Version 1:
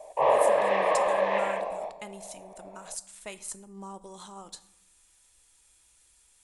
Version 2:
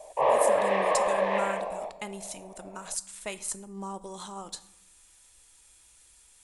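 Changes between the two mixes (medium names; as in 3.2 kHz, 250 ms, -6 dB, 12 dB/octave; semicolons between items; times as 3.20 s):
speech +4.5 dB; background: send -7.0 dB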